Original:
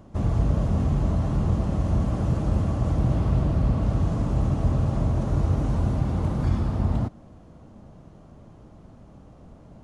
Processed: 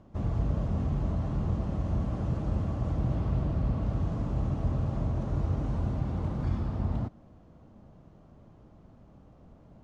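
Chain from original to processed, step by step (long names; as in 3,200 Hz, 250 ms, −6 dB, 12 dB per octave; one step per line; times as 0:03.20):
high-frequency loss of the air 71 metres
level −6.5 dB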